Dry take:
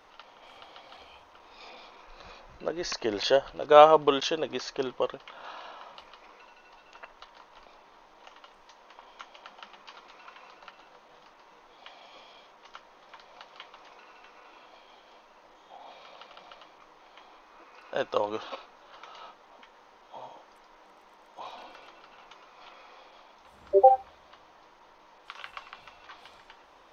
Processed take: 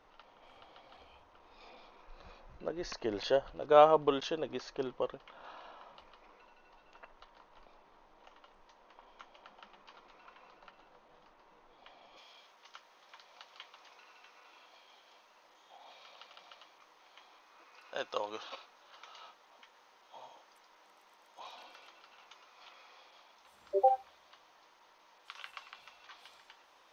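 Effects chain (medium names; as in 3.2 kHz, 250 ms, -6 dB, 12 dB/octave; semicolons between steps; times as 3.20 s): tilt EQ -1.5 dB/octave, from 12.16 s +2.5 dB/octave; trim -7.5 dB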